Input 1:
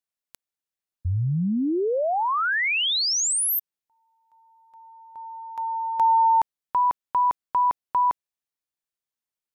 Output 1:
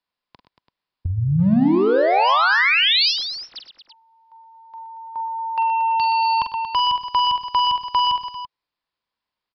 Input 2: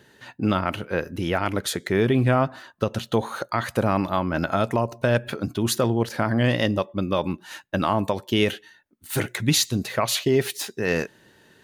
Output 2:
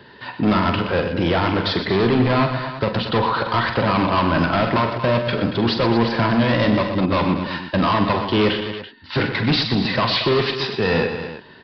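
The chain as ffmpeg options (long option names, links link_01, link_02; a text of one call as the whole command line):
ffmpeg -i in.wav -filter_complex "[0:a]equalizer=frequency=1000:width_type=o:width=0.25:gain=9.5,acrossover=split=150[link_01][link_02];[link_01]acompressor=threshold=-39dB:ratio=6:attack=48:release=71:knee=1:detection=peak[link_03];[link_02]volume=25dB,asoftclip=hard,volume=-25dB[link_04];[link_03][link_04]amix=inputs=2:normalize=0,aecho=1:1:43|47|100|122|231|336:0.282|0.251|0.15|0.335|0.282|0.211,aresample=11025,aresample=44100,volume=8.5dB" out.wav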